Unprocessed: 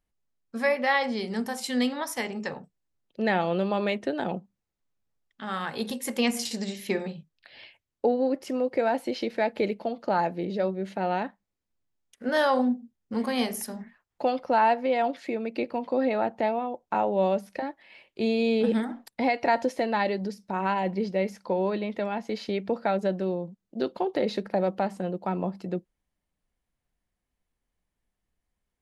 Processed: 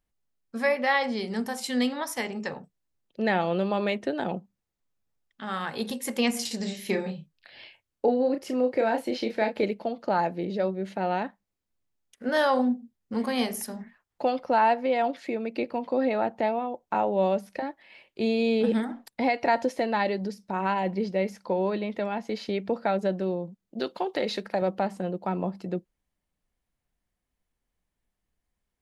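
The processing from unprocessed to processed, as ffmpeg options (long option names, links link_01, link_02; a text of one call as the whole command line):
ffmpeg -i in.wav -filter_complex "[0:a]asettb=1/sr,asplit=3[link_01][link_02][link_03];[link_01]atrim=end=6.574[link_04];[link_02]atrim=start=6.57:end=9.64,asetpts=PTS-STARTPTS,afade=type=in:duration=0.004:curve=qsin,afade=type=out:start_time=3.066:duration=0.004:curve=qsin,asplit=2[link_05][link_06];[link_06]adelay=32,volume=-6.5dB[link_07];[link_05][link_07]amix=inputs=2:normalize=0,atrim=end_sample=135387[link_08];[link_03]atrim=start=9.636[link_09];[link_04][link_08]acrossfade=duration=0.004:curve1=hsin:curve2=qsin[link_10];[link_10][link_09]acrossfade=duration=0.004:curve1=qsin:curve2=hsin,asettb=1/sr,asplit=3[link_11][link_12][link_13];[link_11]atrim=end=23.794[link_14];[link_12]atrim=start=23.79:end=24.62,asetpts=PTS-STARTPTS,afade=type=in:duration=0.004:curve=qsin,afade=type=out:start_time=0.826:duration=0.004:curve=qsin,tiltshelf=frequency=780:gain=-5[link_15];[link_13]atrim=start=24.616[link_16];[link_14][link_15]acrossfade=duration=0.004:curve1=hsin:curve2=qsin[link_17];[link_17][link_16]acrossfade=duration=0.004:curve1=qsin:curve2=hsin" out.wav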